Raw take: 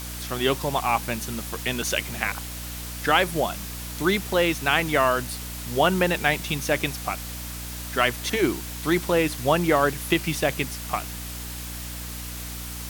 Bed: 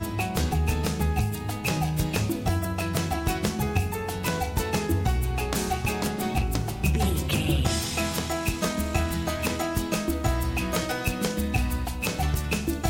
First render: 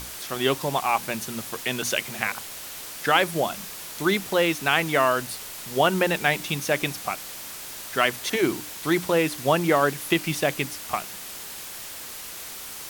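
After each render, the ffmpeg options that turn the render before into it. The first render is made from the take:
-af "bandreject=f=60:t=h:w=6,bandreject=f=120:t=h:w=6,bandreject=f=180:t=h:w=6,bandreject=f=240:t=h:w=6,bandreject=f=300:t=h:w=6"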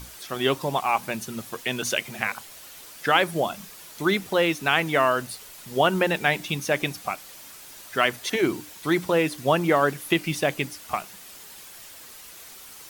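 -af "afftdn=nr=8:nf=-38"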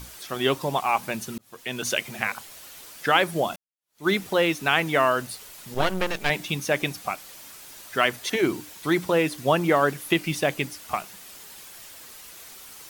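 -filter_complex "[0:a]asettb=1/sr,asplit=3[s0][s1][s2];[s0]atrim=end=5.744[s3];[s1]atrim=start=5.74:end=6.3,asetpts=PTS-STARTPTS,afade=t=in:d=0.004:c=qsin,afade=t=out:st=0.556:d=0.004:c=qsin,aeval=exprs='max(val(0),0)':c=same[s4];[s2]atrim=start=6.296[s5];[s3][s4]acrossfade=d=0.004:c1=hsin:c2=qsin[s6];[s6][s5]acrossfade=d=0.004:c1=qsin:c2=hsin,asplit=3[s7][s8][s9];[s7]atrim=end=1.38,asetpts=PTS-STARTPTS,afade=t=out:st=1.376:d=0.004:c=hsin[s10];[s8]atrim=start=1.38:end=3.56,asetpts=PTS-STARTPTS,afade=t=in:d=0.51,afade=t=out:st=2.176:d=0.004:c=hsin[s11];[s9]atrim=start=3.56,asetpts=PTS-STARTPTS,afade=t=in:d=0.52:c=exp[s12];[s10][s11][s12]concat=n=3:v=0:a=1"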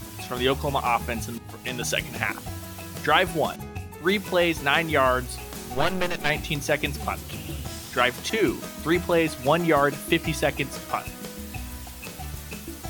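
-filter_complex "[1:a]volume=0.299[s0];[0:a][s0]amix=inputs=2:normalize=0"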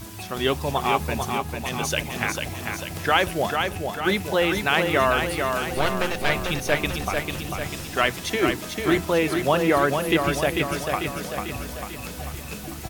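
-af "aecho=1:1:445|890|1335|1780|2225|2670|3115:0.562|0.315|0.176|0.0988|0.0553|0.031|0.0173"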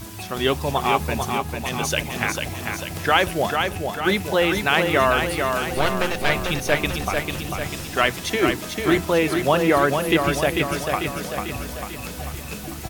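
-af "volume=1.26"

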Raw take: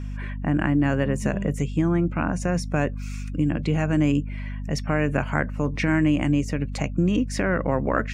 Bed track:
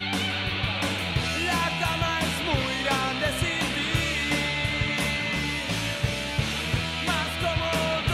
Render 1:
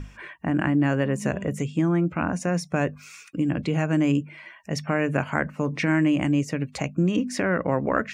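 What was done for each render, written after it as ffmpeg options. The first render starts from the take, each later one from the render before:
-af "bandreject=f=50:t=h:w=6,bandreject=f=100:t=h:w=6,bandreject=f=150:t=h:w=6,bandreject=f=200:t=h:w=6,bandreject=f=250:t=h:w=6"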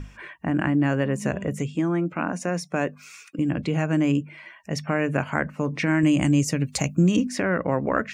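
-filter_complex "[0:a]asettb=1/sr,asplit=3[s0][s1][s2];[s0]atrim=end=1.754[s3];[s1]atrim=start=1.75:end=3.39,asetpts=PTS-STARTPTS,afade=t=in:d=0.004:c=qsin,afade=t=out:st=1.636:d=0.004:c=qsin,highpass=190[s4];[s2]atrim=start=3.386[s5];[s3][s4]acrossfade=d=0.004:c1=hsin:c2=qsin[s6];[s6][s5]acrossfade=d=0.004:c1=qsin:c2=hsin,asettb=1/sr,asplit=3[s7][s8][s9];[s7]atrim=end=6.034[s10];[s8]atrim=start=6.03:end=7.27,asetpts=PTS-STARTPTS,afade=t=in:d=0.004:c=qsin,afade=t=out:st=1.236:d=0.004:c=qsin,bass=f=250:g=5,treble=f=4000:g=13[s11];[s9]atrim=start=7.266[s12];[s10][s11]acrossfade=d=0.004:c1=hsin:c2=qsin[s13];[s13][s12]acrossfade=d=0.004:c1=qsin:c2=hsin"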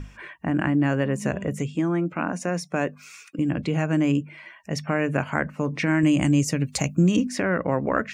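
-af anull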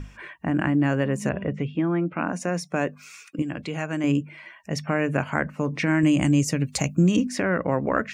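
-filter_complex "[0:a]asettb=1/sr,asplit=3[s0][s1][s2];[s0]atrim=end=1.294[s3];[s1]atrim=start=1.29:end=2.26,asetpts=PTS-STARTPTS,afade=t=in:d=0.004:c=qsin,afade=t=out:st=0.966:d=0.004:c=qsin,lowpass=f=3500:w=0.5412,lowpass=f=3500:w=1.3066[s4];[s2]atrim=start=2.256[s5];[s3][s4]acrossfade=d=0.004:c1=hsin:c2=qsin[s6];[s6][s5]acrossfade=d=0.004:c1=qsin:c2=hsin,asettb=1/sr,asplit=3[s7][s8][s9];[s7]atrim=end=3.424[s10];[s8]atrim=start=3.42:end=4.04,asetpts=PTS-STARTPTS,afade=t=in:d=0.004:c=qsin,afade=t=out:st=0.616:d=0.004:c=qsin,lowshelf=f=470:g=-9[s11];[s9]atrim=start=4.036[s12];[s10][s11]acrossfade=d=0.004:c1=hsin:c2=qsin[s13];[s13][s12]acrossfade=d=0.004:c1=qsin:c2=hsin"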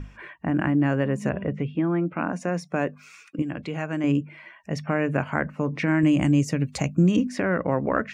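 -af "highshelf=f=4400:g=-10.5"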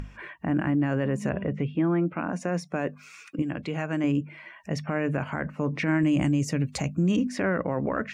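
-af "acompressor=mode=upward:threshold=0.0126:ratio=2.5,alimiter=limit=0.15:level=0:latency=1:release=22"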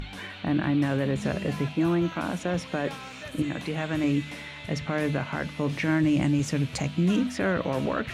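-filter_complex "[1:a]volume=0.188[s0];[0:a][s0]amix=inputs=2:normalize=0"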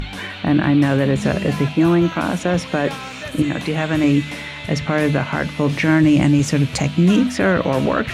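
-af "volume=2.99"

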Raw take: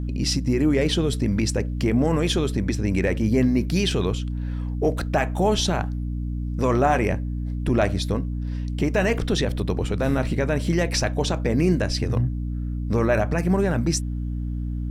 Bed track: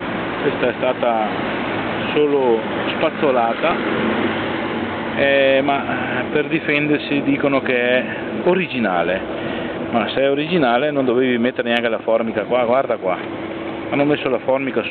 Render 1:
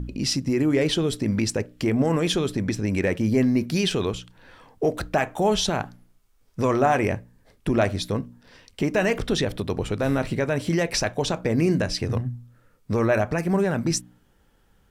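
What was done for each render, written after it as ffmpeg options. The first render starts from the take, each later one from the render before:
-af "bandreject=f=60:t=h:w=4,bandreject=f=120:t=h:w=4,bandreject=f=180:t=h:w=4,bandreject=f=240:t=h:w=4,bandreject=f=300:t=h:w=4"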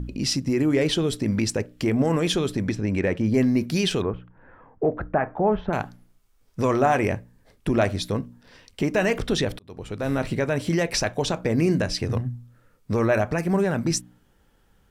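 -filter_complex "[0:a]asettb=1/sr,asplit=3[s0][s1][s2];[s0]atrim=end=2.724[s3];[s1]atrim=start=2.72:end=3.34,asetpts=PTS-STARTPTS,afade=t=in:d=0.004:c=qsin,afade=t=out:st=0.616:d=0.004:c=qsin,aemphasis=mode=reproduction:type=50kf[s4];[s2]atrim=start=3.336[s5];[s3][s4]acrossfade=d=0.004:c1=hsin:c2=qsin[s6];[s6][s5]acrossfade=d=0.004:c1=qsin:c2=hsin,asettb=1/sr,asplit=3[s7][s8][s9];[s7]atrim=end=4.024[s10];[s8]atrim=start=4.02:end=5.73,asetpts=PTS-STARTPTS,afade=t=in:d=0.004:c=qsin,afade=t=out:st=1.706:d=0.004:c=qsin,lowpass=f=1700:w=0.5412,lowpass=f=1700:w=1.3066[s11];[s9]atrim=start=5.726[s12];[s10][s11]acrossfade=d=0.004:c1=hsin:c2=qsin[s13];[s13][s12]acrossfade=d=0.004:c1=qsin:c2=hsin,asplit=2[s14][s15];[s14]atrim=end=9.59,asetpts=PTS-STARTPTS,afade=t=out:st=9.586:d=0.004:c=hsin[s16];[s15]atrim=start=9.59,asetpts=PTS-STARTPTS,afade=t=in:d=0.66[s17];[s16][s17]concat=n=2:v=0:a=1"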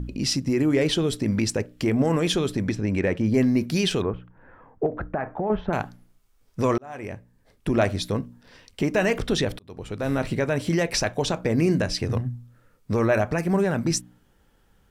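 -filter_complex "[0:a]asettb=1/sr,asplit=3[s0][s1][s2];[s0]atrim=end=4.864[s3];[s1]atrim=start=4.86:end=5.5,asetpts=PTS-STARTPTS,afade=t=in:d=0.004:c=qsin,afade=t=out:st=0.636:d=0.004:c=qsin,acompressor=threshold=0.0794:ratio=6:attack=3.2:release=140:knee=1:detection=peak[s4];[s2]atrim=start=5.496[s5];[s3][s4]acrossfade=d=0.004:c1=hsin:c2=qsin[s6];[s6][s5]acrossfade=d=0.004:c1=qsin:c2=hsin,asplit=2[s7][s8];[s7]atrim=end=6.78,asetpts=PTS-STARTPTS,afade=t=out:st=6.776:d=0.004:c=hsin[s9];[s8]atrim=start=6.78,asetpts=PTS-STARTPTS,afade=t=in:d=1.01[s10];[s9][s10]concat=n=2:v=0:a=1"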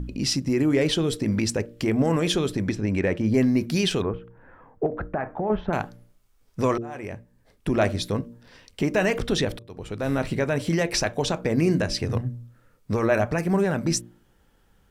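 -af "bandreject=f=116.3:t=h:w=4,bandreject=f=232.6:t=h:w=4,bandreject=f=348.9:t=h:w=4,bandreject=f=465.2:t=h:w=4,bandreject=f=581.5:t=h:w=4"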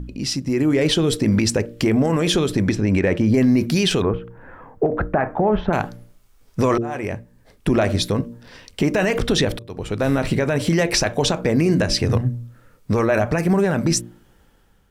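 -af "dynaudnorm=f=320:g=5:m=3.55,alimiter=limit=0.355:level=0:latency=1:release=46"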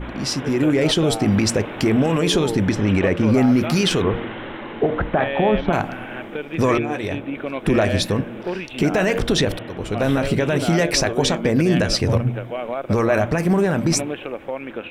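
-filter_complex "[1:a]volume=0.282[s0];[0:a][s0]amix=inputs=2:normalize=0"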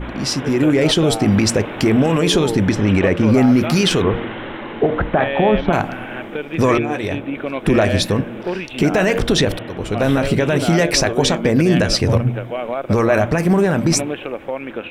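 -af "volume=1.41"

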